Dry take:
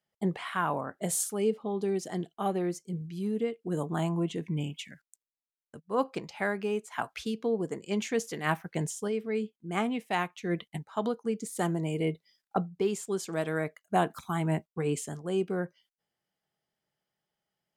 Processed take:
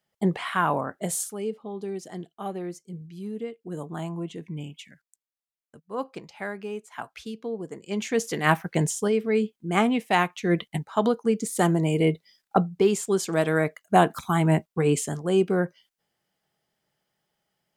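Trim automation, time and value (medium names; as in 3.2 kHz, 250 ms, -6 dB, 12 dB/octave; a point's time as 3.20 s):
0.83 s +6 dB
1.43 s -3 dB
7.70 s -3 dB
8.35 s +8 dB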